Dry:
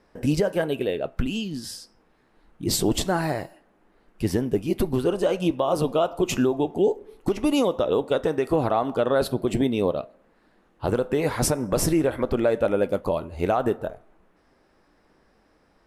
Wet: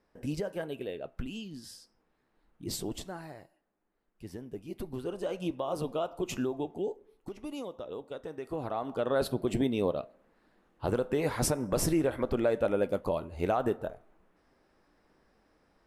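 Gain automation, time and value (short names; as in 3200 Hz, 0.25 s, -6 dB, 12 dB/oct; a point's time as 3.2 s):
2.71 s -12 dB
3.29 s -20 dB
4.25 s -20 dB
5.43 s -10.5 dB
6.62 s -10.5 dB
7.29 s -18 dB
8.22 s -18 dB
9.22 s -6 dB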